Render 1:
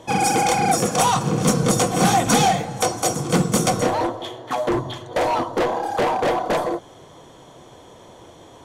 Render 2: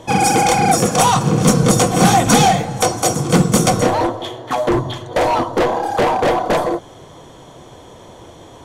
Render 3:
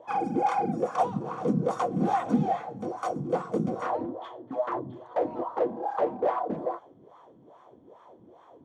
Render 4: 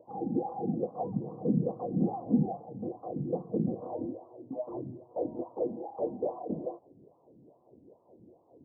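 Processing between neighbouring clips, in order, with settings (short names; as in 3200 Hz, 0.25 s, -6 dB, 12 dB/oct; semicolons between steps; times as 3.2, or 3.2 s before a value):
low shelf 120 Hz +5.5 dB; gain +4.5 dB
wah 2.4 Hz 210–1200 Hz, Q 3.2; gain -5 dB
Gaussian blur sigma 15 samples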